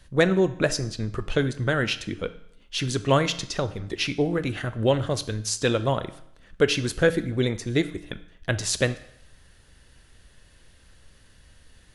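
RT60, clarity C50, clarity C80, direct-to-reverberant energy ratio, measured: 0.70 s, 15.0 dB, 18.0 dB, 11.5 dB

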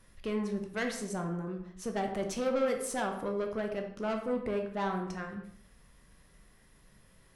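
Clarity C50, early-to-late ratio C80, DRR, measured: 7.0 dB, 10.0 dB, 3.0 dB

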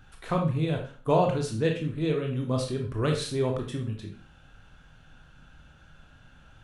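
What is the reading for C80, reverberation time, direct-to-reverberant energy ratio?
11.5 dB, 0.40 s, 1.0 dB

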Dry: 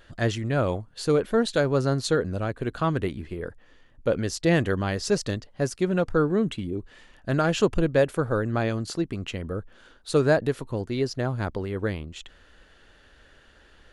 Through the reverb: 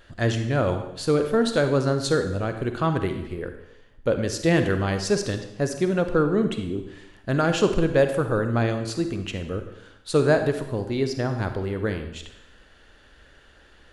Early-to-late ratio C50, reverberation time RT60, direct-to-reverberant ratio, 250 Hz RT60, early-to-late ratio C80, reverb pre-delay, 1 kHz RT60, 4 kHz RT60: 8.0 dB, 0.85 s, 7.0 dB, 0.80 s, 10.5 dB, 30 ms, 0.85 s, 0.85 s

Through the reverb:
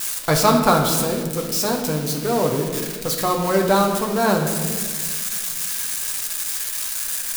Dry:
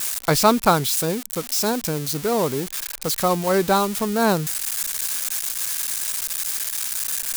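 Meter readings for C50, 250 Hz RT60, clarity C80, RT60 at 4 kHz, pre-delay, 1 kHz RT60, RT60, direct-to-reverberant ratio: 5.0 dB, 2.4 s, 6.5 dB, 1.1 s, 7 ms, 1.4 s, 1.7 s, 0.5 dB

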